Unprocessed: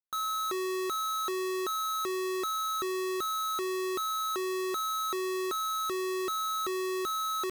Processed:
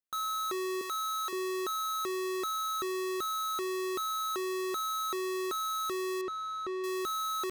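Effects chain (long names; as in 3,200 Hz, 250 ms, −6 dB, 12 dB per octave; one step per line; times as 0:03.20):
0:00.81–0:01.33: high-pass filter 630 Hz 12 dB per octave
0:06.21–0:06.84: head-to-tape spacing loss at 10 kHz 23 dB
level −1.5 dB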